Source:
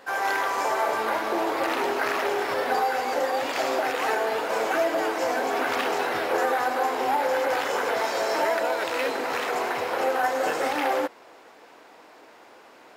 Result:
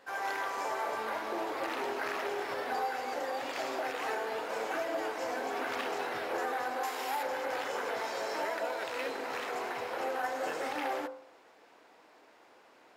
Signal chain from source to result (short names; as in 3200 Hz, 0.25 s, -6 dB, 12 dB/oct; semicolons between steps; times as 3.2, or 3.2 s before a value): high shelf 11000 Hz -4 dB; de-hum 47.41 Hz, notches 33; 6.83–7.23 tilt +3 dB/oct; gain -9 dB